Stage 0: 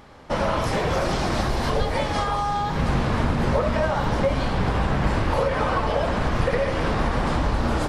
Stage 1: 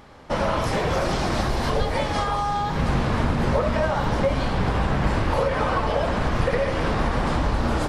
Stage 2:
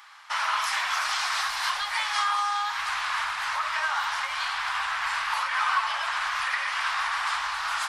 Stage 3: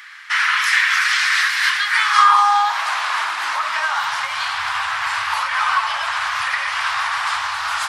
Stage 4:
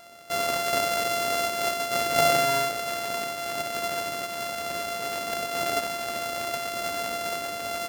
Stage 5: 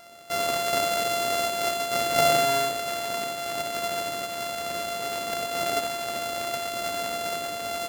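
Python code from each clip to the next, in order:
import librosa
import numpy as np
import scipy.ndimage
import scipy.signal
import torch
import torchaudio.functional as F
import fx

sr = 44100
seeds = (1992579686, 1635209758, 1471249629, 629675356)

y1 = x
y2 = scipy.signal.sosfilt(scipy.signal.cheby2(4, 40, 530.0, 'highpass', fs=sr, output='sos'), y1)
y2 = y2 * 10.0 ** (4.0 / 20.0)
y3 = fx.filter_sweep_highpass(y2, sr, from_hz=1800.0, to_hz=89.0, start_s=1.8, end_s=4.53, q=3.0)
y3 = y3 * 10.0 ** (6.5 / 20.0)
y4 = np.r_[np.sort(y3[:len(y3) // 64 * 64].reshape(-1, 64), axis=1).ravel(), y3[len(y3) // 64 * 64:]]
y4 = y4 * 10.0 ** (-9.0 / 20.0)
y5 = y4 + 10.0 ** (-10.5 / 20.0) * np.pad(y4, (int(83 * sr / 1000.0), 0))[:len(y4)]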